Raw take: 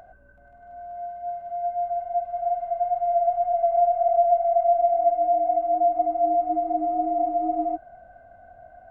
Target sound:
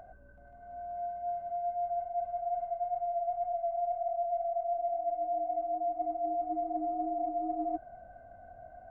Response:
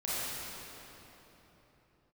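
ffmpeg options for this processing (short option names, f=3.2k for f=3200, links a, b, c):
-af "tiltshelf=f=1.1k:g=4,areverse,acompressor=threshold=-26dB:ratio=6,areverse,volume=-4.5dB"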